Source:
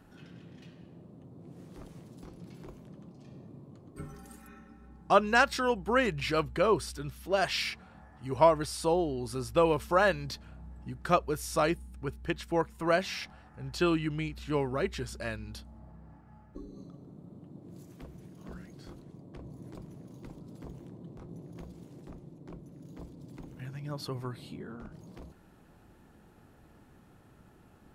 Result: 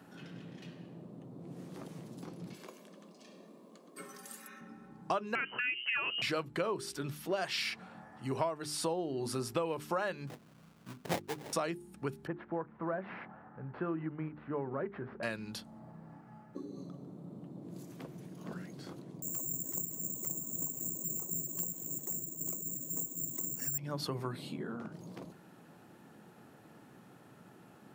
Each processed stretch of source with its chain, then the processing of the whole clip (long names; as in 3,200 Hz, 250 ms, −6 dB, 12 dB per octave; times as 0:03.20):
0:02.53–0:04.61: Butterworth high-pass 190 Hz 48 dB per octave + tilt shelving filter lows −5 dB, about 1,400 Hz + comb filter 1.8 ms, depth 33%
0:05.35–0:06.22: voice inversion scrambler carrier 3,000 Hz + downward compressor 1.5 to 1, threshold −29 dBFS
0:10.27–0:11.53: sample-rate reduction 1,300 Hz, jitter 20% + expander for the loud parts, over −38 dBFS
0:12.27–0:15.23: variable-slope delta modulation 32 kbit/s + low-pass filter 1,600 Hz 24 dB per octave + downward compressor 1.5 to 1, threshold −47 dBFS
0:19.22–0:23.78: all-pass phaser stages 12, 3.8 Hz, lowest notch 120–3,300 Hz + bad sample-rate conversion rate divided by 6×, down filtered, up zero stuff
whole clip: high-pass filter 130 Hz 24 dB per octave; mains-hum notches 50/100/150/200/250/300/350/400 Hz; downward compressor 6 to 1, threshold −35 dBFS; level +3.5 dB